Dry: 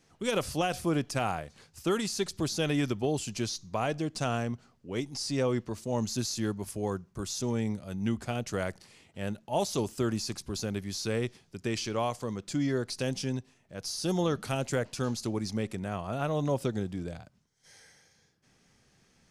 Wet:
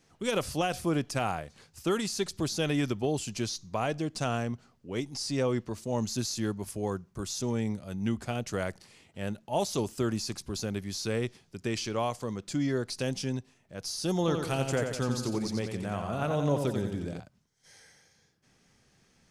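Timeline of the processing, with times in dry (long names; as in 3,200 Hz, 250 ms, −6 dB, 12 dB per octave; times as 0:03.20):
0:14.19–0:17.20: repeating echo 89 ms, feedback 51%, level −6 dB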